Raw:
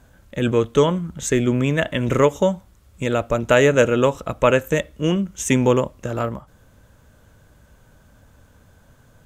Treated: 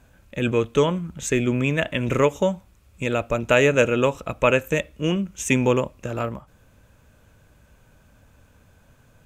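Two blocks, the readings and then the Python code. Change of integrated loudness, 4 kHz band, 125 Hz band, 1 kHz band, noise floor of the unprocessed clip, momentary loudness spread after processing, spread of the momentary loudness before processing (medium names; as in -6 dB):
-2.5 dB, -1.5 dB, -3.0 dB, -3.0 dB, -54 dBFS, 11 LU, 11 LU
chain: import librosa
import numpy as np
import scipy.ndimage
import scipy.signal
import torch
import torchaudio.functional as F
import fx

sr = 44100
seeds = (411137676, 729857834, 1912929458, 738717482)

y = fx.peak_eq(x, sr, hz=2500.0, db=9.0, octaves=0.23)
y = y * 10.0 ** (-3.0 / 20.0)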